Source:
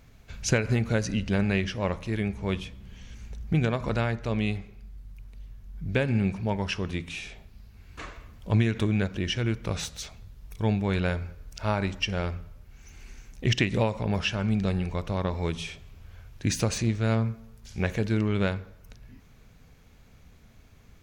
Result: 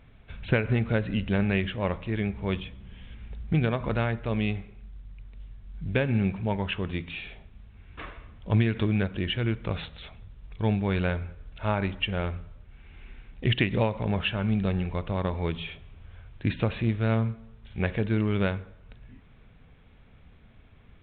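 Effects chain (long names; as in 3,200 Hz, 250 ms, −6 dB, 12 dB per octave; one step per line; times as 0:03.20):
mu-law 64 kbit/s 8,000 Hz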